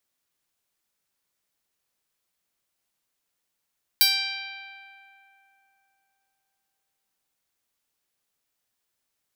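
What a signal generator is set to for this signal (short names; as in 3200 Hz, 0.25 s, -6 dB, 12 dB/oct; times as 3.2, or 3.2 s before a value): plucked string G5, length 3.33 s, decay 3.39 s, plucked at 0.09, bright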